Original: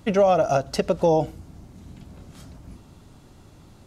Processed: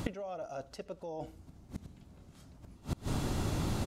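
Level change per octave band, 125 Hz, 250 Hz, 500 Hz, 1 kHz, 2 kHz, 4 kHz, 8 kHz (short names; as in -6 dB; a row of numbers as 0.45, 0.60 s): -5.0, -10.0, -20.0, -18.0, -11.0, -8.0, -6.0 dB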